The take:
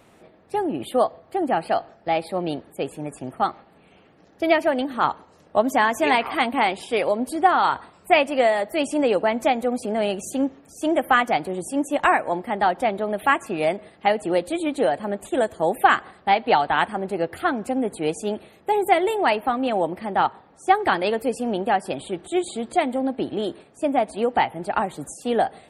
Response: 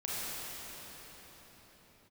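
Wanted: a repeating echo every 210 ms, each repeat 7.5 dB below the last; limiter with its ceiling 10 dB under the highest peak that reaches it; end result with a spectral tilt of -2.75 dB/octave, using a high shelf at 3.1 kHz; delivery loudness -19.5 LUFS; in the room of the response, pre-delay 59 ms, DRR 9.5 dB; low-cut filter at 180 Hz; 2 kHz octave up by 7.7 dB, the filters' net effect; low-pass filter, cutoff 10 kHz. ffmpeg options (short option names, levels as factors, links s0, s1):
-filter_complex "[0:a]highpass=180,lowpass=10000,equalizer=f=2000:t=o:g=6.5,highshelf=f=3100:g=9,alimiter=limit=0.376:level=0:latency=1,aecho=1:1:210|420|630|840|1050:0.422|0.177|0.0744|0.0312|0.0131,asplit=2[s0][s1];[1:a]atrim=start_sample=2205,adelay=59[s2];[s1][s2]afir=irnorm=-1:irlink=0,volume=0.178[s3];[s0][s3]amix=inputs=2:normalize=0,volume=1.26"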